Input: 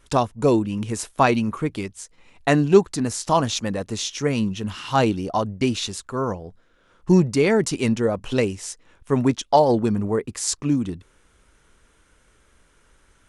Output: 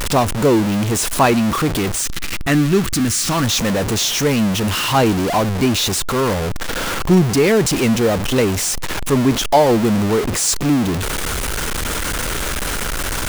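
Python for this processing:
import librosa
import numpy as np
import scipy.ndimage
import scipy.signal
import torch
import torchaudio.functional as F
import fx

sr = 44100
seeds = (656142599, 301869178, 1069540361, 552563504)

y = x + 0.5 * 10.0 ** (-16.5 / 20.0) * np.sign(x)
y = fx.spec_box(y, sr, start_s=2.01, length_s=1.43, low_hz=370.0, high_hz=1100.0, gain_db=-8)
y = F.gain(torch.from_numpy(y), 1.0).numpy()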